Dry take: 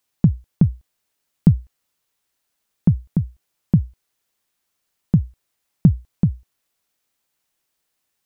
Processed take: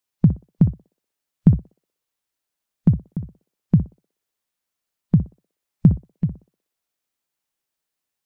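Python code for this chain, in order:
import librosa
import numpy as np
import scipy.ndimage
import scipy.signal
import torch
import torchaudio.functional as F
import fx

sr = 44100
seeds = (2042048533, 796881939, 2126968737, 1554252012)

y = fx.echo_banded(x, sr, ms=61, feedback_pct=48, hz=520.0, wet_db=-5.0)
y = fx.noise_reduce_blind(y, sr, reduce_db=8)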